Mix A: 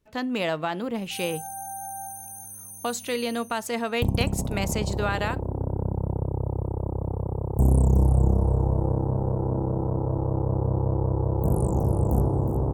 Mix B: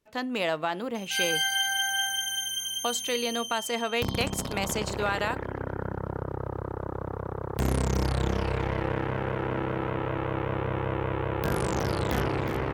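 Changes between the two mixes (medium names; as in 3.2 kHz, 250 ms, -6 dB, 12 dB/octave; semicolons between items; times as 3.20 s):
background: remove Chebyshev band-stop 870–8200 Hz, order 3; master: add bass shelf 200 Hz -11 dB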